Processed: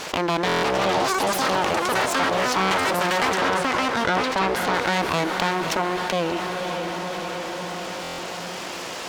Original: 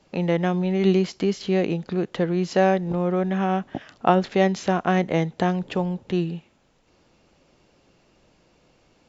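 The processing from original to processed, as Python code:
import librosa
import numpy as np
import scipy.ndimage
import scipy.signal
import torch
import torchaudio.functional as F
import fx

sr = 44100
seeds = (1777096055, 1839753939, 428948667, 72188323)

p1 = fx.echo_pitch(x, sr, ms=336, semitones=6, count=2, db_per_echo=-3.0)
p2 = np.abs(p1)
p3 = fx.highpass(p2, sr, hz=540.0, slope=6)
p4 = fx.echo_diffused(p3, sr, ms=562, feedback_pct=46, wet_db=-14.5)
p5 = fx.fold_sine(p4, sr, drive_db=9, ceiling_db=-8.0)
p6 = p4 + F.gain(torch.from_numpy(p5), -10.0).numpy()
p7 = fx.high_shelf(p6, sr, hz=5400.0, db=-8.5, at=(3.37, 4.74))
p8 = fx.buffer_glitch(p7, sr, at_s=(0.47, 8.02), block=1024, repeats=6)
p9 = fx.env_flatten(p8, sr, amount_pct=70)
y = F.gain(torch.from_numpy(p9), -4.0).numpy()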